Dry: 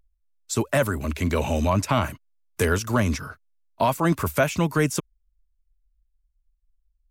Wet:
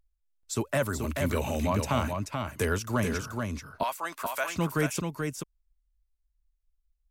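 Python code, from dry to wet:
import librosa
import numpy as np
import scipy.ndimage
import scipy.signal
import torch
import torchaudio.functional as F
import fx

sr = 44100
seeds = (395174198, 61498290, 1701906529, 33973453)

y = fx.high_shelf(x, sr, hz=11000.0, db=11.5, at=(0.89, 1.6))
y = fx.highpass(y, sr, hz=850.0, slope=12, at=(3.83, 4.51))
y = y + 10.0 ** (-5.0 / 20.0) * np.pad(y, (int(433 * sr / 1000.0), 0))[:len(y)]
y = y * 10.0 ** (-6.0 / 20.0)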